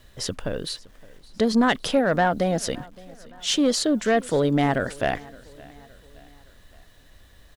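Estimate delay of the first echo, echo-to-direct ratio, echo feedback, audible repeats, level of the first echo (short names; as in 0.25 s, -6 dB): 0.566 s, -22.0 dB, 51%, 3, -23.0 dB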